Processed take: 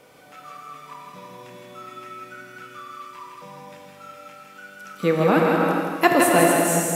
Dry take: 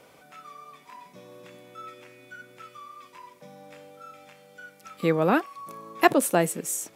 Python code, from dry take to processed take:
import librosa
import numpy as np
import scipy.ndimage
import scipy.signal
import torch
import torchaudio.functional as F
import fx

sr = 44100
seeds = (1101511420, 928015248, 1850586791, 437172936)

p1 = x + fx.echo_feedback(x, sr, ms=162, feedback_pct=45, wet_db=-5, dry=0)
p2 = fx.rev_gated(p1, sr, seeds[0], gate_ms=470, shape='flat', drr_db=-0.5)
y = p2 * librosa.db_to_amplitude(1.5)